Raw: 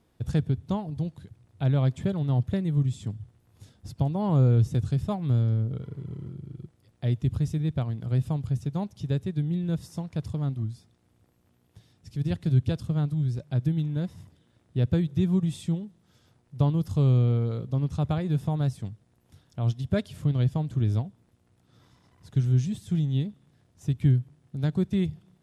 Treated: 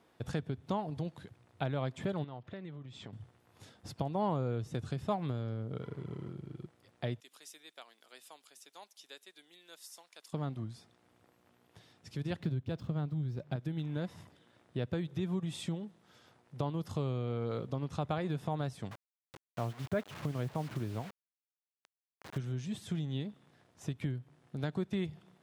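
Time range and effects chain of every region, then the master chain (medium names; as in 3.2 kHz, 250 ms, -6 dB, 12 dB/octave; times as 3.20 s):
2.24–3.13 s: low-pass 4 kHz + bass shelf 410 Hz -6 dB + compression 12:1, threshold -38 dBFS
7.20–10.33 s: high-pass 260 Hz 24 dB/octave + differentiator
12.40–13.56 s: median filter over 5 samples + bass shelf 350 Hz +8 dB
18.91–22.38 s: low-pass 2.2 kHz + word length cut 8-bit, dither none
whole clip: treble shelf 3.5 kHz -11.5 dB; compression 4:1, threshold -29 dBFS; high-pass 760 Hz 6 dB/octave; trim +8.5 dB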